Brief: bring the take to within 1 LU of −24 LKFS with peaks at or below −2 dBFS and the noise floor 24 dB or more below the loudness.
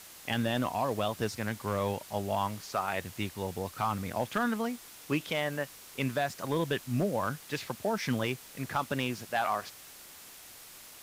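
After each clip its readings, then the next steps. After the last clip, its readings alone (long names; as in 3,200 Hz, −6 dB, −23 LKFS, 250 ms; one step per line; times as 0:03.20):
share of clipped samples 0.3%; peaks flattened at −20.5 dBFS; background noise floor −51 dBFS; target noise floor −57 dBFS; integrated loudness −33.0 LKFS; sample peak −20.5 dBFS; target loudness −24.0 LKFS
→ clipped peaks rebuilt −20.5 dBFS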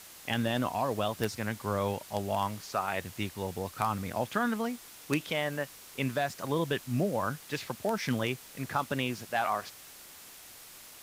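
share of clipped samples 0.0%; background noise floor −51 dBFS; target noise floor −57 dBFS
→ noise reduction from a noise print 6 dB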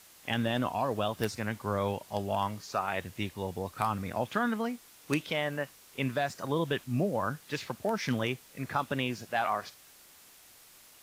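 background noise floor −57 dBFS; integrated loudness −33.0 LKFS; sample peak −12.0 dBFS; target loudness −24.0 LKFS
→ level +9 dB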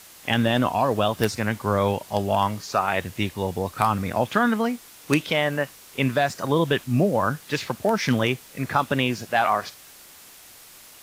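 integrated loudness −24.0 LKFS; sample peak −3.0 dBFS; background noise floor −48 dBFS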